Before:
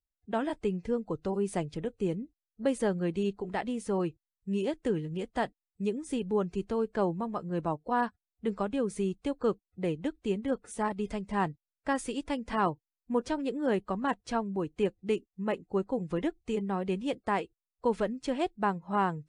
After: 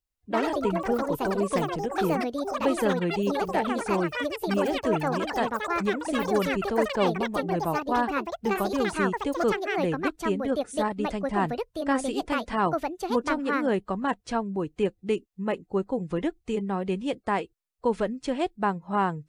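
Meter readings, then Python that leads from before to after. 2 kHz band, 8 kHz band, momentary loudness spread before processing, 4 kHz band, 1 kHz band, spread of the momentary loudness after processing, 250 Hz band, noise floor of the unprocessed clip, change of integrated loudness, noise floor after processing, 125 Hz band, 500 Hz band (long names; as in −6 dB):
+8.5 dB, +5.0 dB, 5 LU, +8.0 dB, +6.0 dB, 4 LU, +4.0 dB, below −85 dBFS, +5.0 dB, −70 dBFS, +3.0 dB, +5.0 dB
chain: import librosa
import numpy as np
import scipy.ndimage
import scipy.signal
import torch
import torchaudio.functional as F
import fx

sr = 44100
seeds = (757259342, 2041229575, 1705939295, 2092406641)

y = fx.echo_pitch(x, sr, ms=103, semitones=6, count=3, db_per_echo=-3.0)
y = y * librosa.db_to_amplitude(3.0)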